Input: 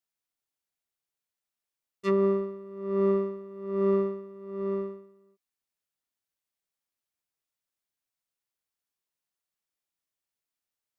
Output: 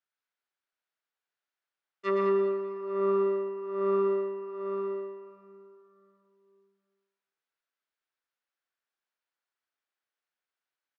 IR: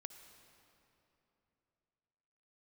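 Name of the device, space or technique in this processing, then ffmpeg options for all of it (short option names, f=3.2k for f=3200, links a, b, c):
station announcement: -filter_complex "[0:a]highpass=360,lowpass=3.8k,equalizer=f=1.5k:t=o:w=0.55:g=7,aecho=1:1:116.6|157.4|201.2:0.501|0.316|0.398[a];[1:a]atrim=start_sample=2205[b];[a][b]afir=irnorm=-1:irlink=0,volume=4.5dB"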